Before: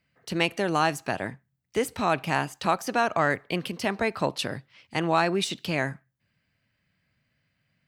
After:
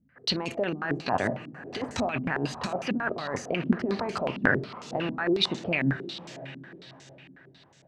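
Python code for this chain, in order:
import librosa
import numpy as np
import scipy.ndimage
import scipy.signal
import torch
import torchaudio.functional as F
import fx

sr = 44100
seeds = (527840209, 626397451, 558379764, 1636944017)

y = fx.over_compress(x, sr, threshold_db=-31.0, ratio=-1.0)
y = fx.echo_diffused(y, sr, ms=594, feedback_pct=42, wet_db=-13.5)
y = fx.rev_fdn(y, sr, rt60_s=0.6, lf_ratio=1.0, hf_ratio=0.35, size_ms=24.0, drr_db=11.5)
y = fx.filter_held_lowpass(y, sr, hz=11.0, low_hz=250.0, high_hz=6700.0)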